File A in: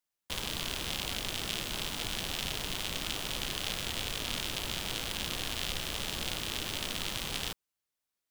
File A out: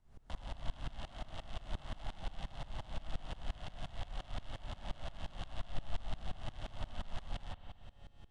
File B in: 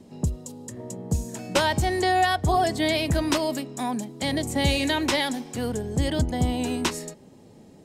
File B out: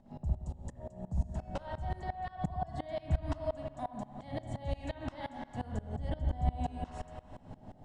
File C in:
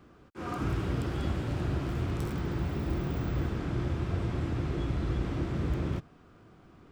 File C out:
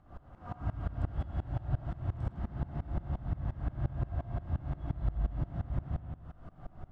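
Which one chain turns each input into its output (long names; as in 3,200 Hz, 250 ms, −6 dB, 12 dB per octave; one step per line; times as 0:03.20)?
tuned comb filter 140 Hz, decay 1.6 s, mix 60%
upward compression, threshold −40 dBFS
Chebyshev low-pass filter 10,000 Hz, order 6
low shelf with overshoot 540 Hz −7.5 dB, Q 3
notch filter 2,400 Hz, Q 8.8
delay with a band-pass on its return 199 ms, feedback 75%, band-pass 760 Hz, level −22 dB
background noise pink −71 dBFS
brickwall limiter −27 dBFS
downward compressor, threshold −37 dBFS
spectral tilt −4.5 dB per octave
spring reverb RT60 1.8 s, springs 59 ms, chirp 40 ms, DRR 2 dB
tremolo with a ramp in dB swelling 5.7 Hz, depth 22 dB
level +2.5 dB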